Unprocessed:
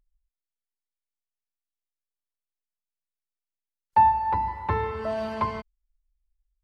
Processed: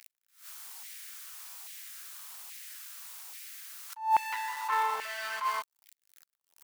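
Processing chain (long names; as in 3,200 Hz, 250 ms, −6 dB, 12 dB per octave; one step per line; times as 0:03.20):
converter with a step at zero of −37 dBFS
high-shelf EQ 4,000 Hz +8.5 dB
in parallel at −5 dB: hard clipping −25.5 dBFS, distortion −4 dB
on the sum: auto-filter high-pass saw down 1.2 Hz 800–2,200 Hz
level that may rise only so fast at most 150 dB per second
level −6.5 dB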